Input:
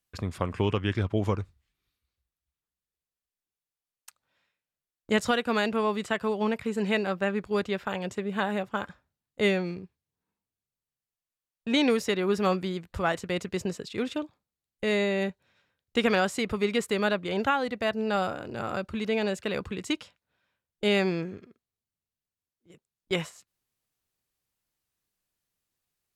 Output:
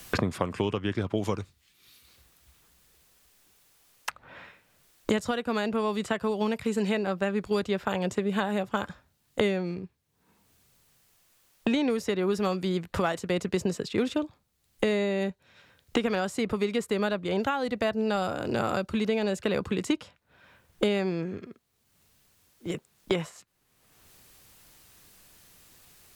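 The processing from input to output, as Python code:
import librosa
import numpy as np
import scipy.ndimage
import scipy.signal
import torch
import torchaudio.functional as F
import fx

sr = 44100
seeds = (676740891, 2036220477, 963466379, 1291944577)

y = fx.rider(x, sr, range_db=10, speed_s=0.5)
y = fx.dynamic_eq(y, sr, hz=2200.0, q=0.84, threshold_db=-41.0, ratio=4.0, max_db=-4)
y = fx.band_squash(y, sr, depth_pct=100)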